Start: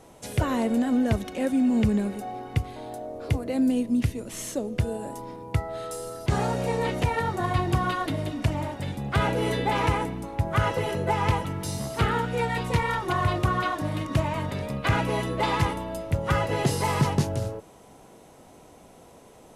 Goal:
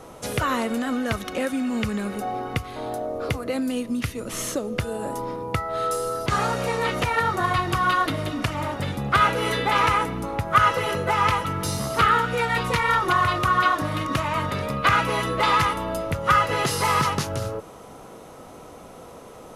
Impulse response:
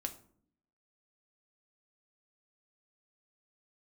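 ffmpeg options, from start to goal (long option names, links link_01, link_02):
-filter_complex "[0:a]equalizer=frequency=500:width_type=o:width=0.33:gain=4,equalizer=frequency=1250:width_type=o:width=0.33:gain=10,equalizer=frequency=8000:width_type=o:width=0.33:gain=-4,acrossover=split=1100[link_01][link_02];[link_01]acompressor=threshold=-31dB:ratio=6[link_03];[link_03][link_02]amix=inputs=2:normalize=0,volume=6.5dB"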